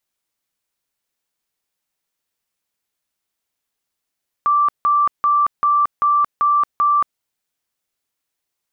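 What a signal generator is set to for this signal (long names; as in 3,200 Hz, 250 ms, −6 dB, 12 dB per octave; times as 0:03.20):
tone bursts 1,170 Hz, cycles 264, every 0.39 s, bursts 7, −12 dBFS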